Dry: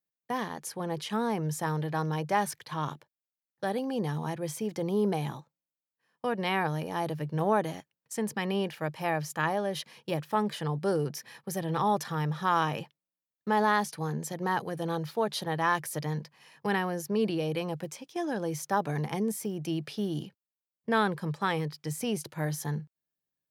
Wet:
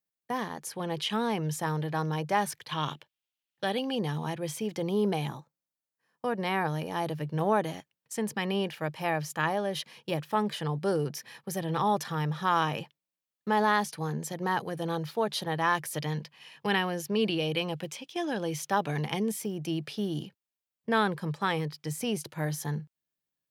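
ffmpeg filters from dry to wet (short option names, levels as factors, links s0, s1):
-af "asetnsamples=n=441:p=0,asendcmd='0.72 equalizer g 9;1.56 equalizer g 2.5;2.69 equalizer g 13.5;3.95 equalizer g 6;5.27 equalizer g -3;6.67 equalizer g 3;15.94 equalizer g 10;19.42 equalizer g 2.5',equalizer=f=3000:t=o:w=0.89:g=-0.5"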